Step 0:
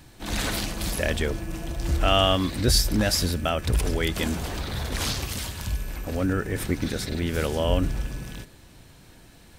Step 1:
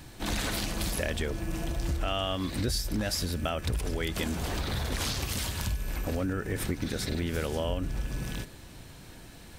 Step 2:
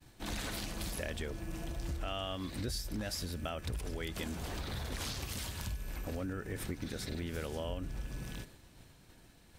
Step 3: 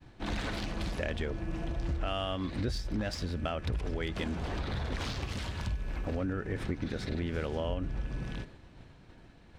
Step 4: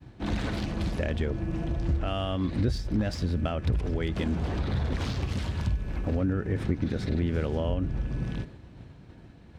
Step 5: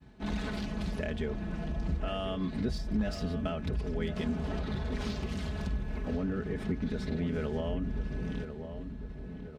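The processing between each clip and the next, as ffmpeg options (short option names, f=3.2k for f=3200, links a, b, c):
-af "acompressor=threshold=-30dB:ratio=6,volume=2.5dB"
-af "agate=range=-33dB:threshold=-43dB:ratio=3:detection=peak,volume=-8dB"
-af "adynamicsmooth=sensitivity=4:basefreq=3.4k,volume=5.5dB"
-af "highpass=56,lowshelf=f=410:g=9"
-filter_complex "[0:a]aecho=1:1:4.7:0.71,asplit=2[a][b];[b]adelay=1048,lowpass=f=1.6k:p=1,volume=-8.5dB,asplit=2[c][d];[d]adelay=1048,lowpass=f=1.6k:p=1,volume=0.54,asplit=2[e][f];[f]adelay=1048,lowpass=f=1.6k:p=1,volume=0.54,asplit=2[g][h];[h]adelay=1048,lowpass=f=1.6k:p=1,volume=0.54,asplit=2[i][j];[j]adelay=1048,lowpass=f=1.6k:p=1,volume=0.54,asplit=2[k][l];[l]adelay=1048,lowpass=f=1.6k:p=1,volume=0.54[m];[a][c][e][g][i][k][m]amix=inputs=7:normalize=0,volume=-6dB"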